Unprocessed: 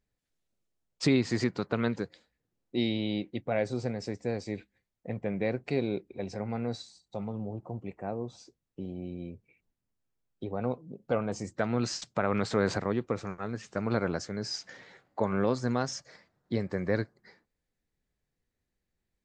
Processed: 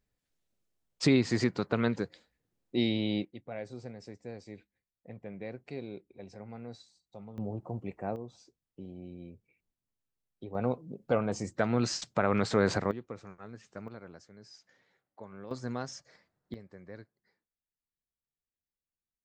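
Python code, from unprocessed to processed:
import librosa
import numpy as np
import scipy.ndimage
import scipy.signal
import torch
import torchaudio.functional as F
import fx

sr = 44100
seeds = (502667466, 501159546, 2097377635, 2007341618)

y = fx.gain(x, sr, db=fx.steps((0.0, 0.5), (3.25, -11.0), (7.38, 0.5), (8.16, -6.5), (10.55, 1.0), (12.91, -11.0), (13.88, -18.5), (15.51, -7.0), (16.54, -18.5)))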